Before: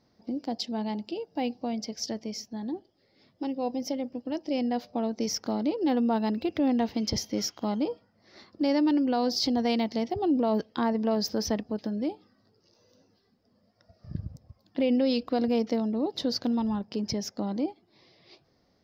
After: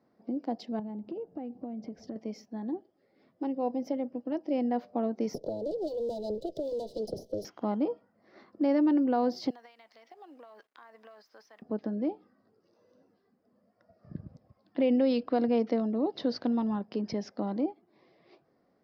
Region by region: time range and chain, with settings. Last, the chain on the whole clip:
0:00.79–0:02.16: spectral tilt −3.5 dB per octave + downward compressor 16 to 1, threshold −33 dBFS
0:05.34–0:07.45: lower of the sound and its delayed copy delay 2 ms + elliptic band-stop filter 650–3,900 Hz + multiband upward and downward compressor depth 100%
0:09.50–0:11.62: high-pass filter 1,400 Hz + downward compressor 16 to 1, threshold −45 dBFS + log-companded quantiser 6 bits
0:14.26–0:17.61: low-pass filter 5,000 Hz 24 dB per octave + high-shelf EQ 3,400 Hz +12 dB
whole clip: three-way crossover with the lows and the highs turned down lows −16 dB, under 160 Hz, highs −17 dB, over 2,000 Hz; notch filter 890 Hz, Q 18

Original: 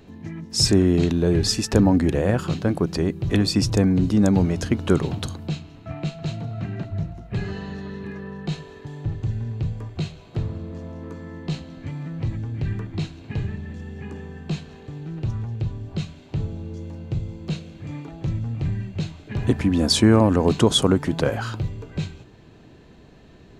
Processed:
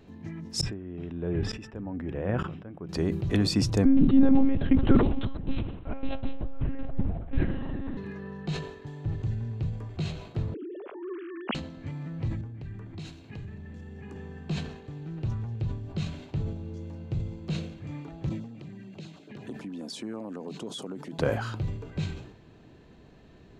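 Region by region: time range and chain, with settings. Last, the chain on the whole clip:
0:00.61–0:02.89: Savitzky-Golay smoothing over 25 samples + tremolo with a ramp in dB swelling 1.1 Hz, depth 24 dB
0:03.85–0:07.97: low-shelf EQ 470 Hz +7 dB + one-pitch LPC vocoder at 8 kHz 270 Hz
0:10.54–0:11.55: three sine waves on the formant tracks + high-pass filter 200 Hz 24 dB per octave + parametric band 1,900 Hz −5 dB 0.41 octaves
0:12.41–0:14.16: high-shelf EQ 6,400 Hz +6 dB + downward compressor, threshold −32 dBFS + multiband upward and downward expander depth 70%
0:18.29–0:21.19: high-pass filter 170 Hz 24 dB per octave + downward compressor 2.5 to 1, threshold −36 dBFS + auto-filter notch saw down 9.2 Hz 700–2,600 Hz
whole clip: high-shelf EQ 4,800 Hz −4.5 dB; level that may fall only so fast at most 72 dB per second; level −5 dB

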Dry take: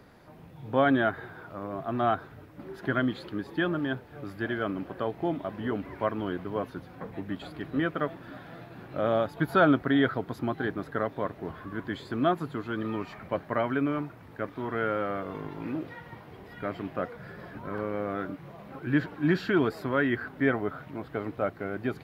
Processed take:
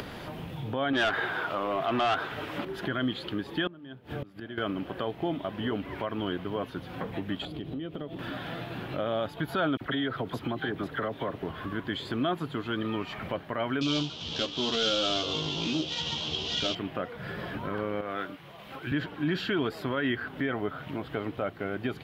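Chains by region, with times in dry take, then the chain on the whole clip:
0:00.93–0:02.65: mid-hump overdrive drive 20 dB, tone 4,600 Hz, clips at −12.5 dBFS + downward compressor 2 to 1, threshold −26 dBFS
0:03.67–0:04.58: parametric band 180 Hz +6.5 dB 2.4 octaves + mains-hum notches 50/100/150 Hz + gate with flip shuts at −29 dBFS, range −24 dB
0:07.45–0:08.19: drawn EQ curve 400 Hz 0 dB, 1,600 Hz −15 dB, 3,300 Hz −5 dB, 5,400 Hz −8 dB + downward compressor 4 to 1, threshold −40 dBFS
0:09.77–0:11.43: all-pass dispersion lows, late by 42 ms, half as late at 1,600 Hz + downward compressor 5 to 1, threshold −27 dBFS
0:13.81–0:16.75: variable-slope delta modulation 32 kbit/s + high shelf with overshoot 2,500 Hz +9 dB, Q 3 + double-tracking delay 13 ms −2 dB
0:18.01–0:18.92: low-shelf EQ 450 Hz −10.5 dB + multiband upward and downward expander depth 100%
whole clip: upward compression, threshold −28 dBFS; brickwall limiter −20 dBFS; parametric band 3,100 Hz +10 dB 0.59 octaves

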